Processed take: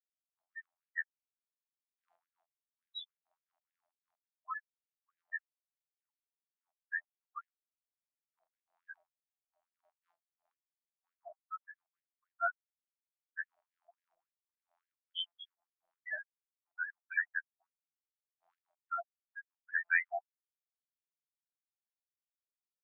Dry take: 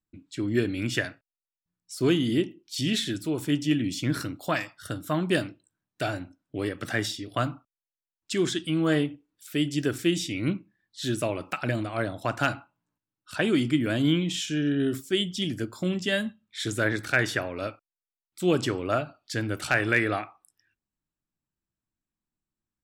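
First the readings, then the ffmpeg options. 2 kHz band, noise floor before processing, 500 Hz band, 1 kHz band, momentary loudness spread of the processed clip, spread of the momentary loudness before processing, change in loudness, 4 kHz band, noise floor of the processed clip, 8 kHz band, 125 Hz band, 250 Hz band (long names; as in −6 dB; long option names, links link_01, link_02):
−8.5 dB, below −85 dBFS, −24.5 dB, −11.5 dB, 20 LU, 10 LU, −11.5 dB, −17.5 dB, below −85 dBFS, below −40 dB, below −40 dB, below −40 dB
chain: -af "afftfilt=real='re*gte(hypot(re,im),0.282)':imag='im*gte(hypot(re,im),0.282)':win_size=1024:overlap=0.75,afftfilt=real='hypot(re,im)*cos(PI*b)':imag='0':win_size=2048:overlap=0.75,afftfilt=real='re*gte(b*sr/1024,620*pow(1700/620,0.5+0.5*sin(2*PI*3.5*pts/sr)))':imag='im*gte(b*sr/1024,620*pow(1700/620,0.5+0.5*sin(2*PI*3.5*pts/sr)))':win_size=1024:overlap=0.75,volume=1dB"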